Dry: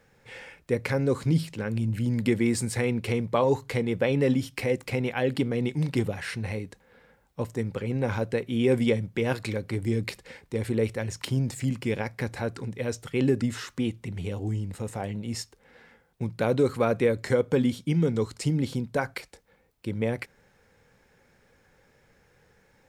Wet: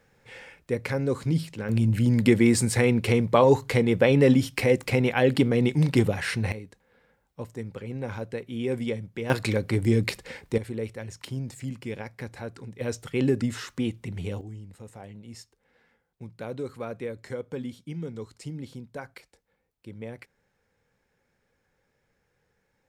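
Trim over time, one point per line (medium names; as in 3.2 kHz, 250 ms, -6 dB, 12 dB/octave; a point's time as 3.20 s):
-1.5 dB
from 1.69 s +5 dB
from 6.52 s -6 dB
from 9.30 s +5 dB
from 10.58 s -6.5 dB
from 12.81 s 0 dB
from 14.41 s -11 dB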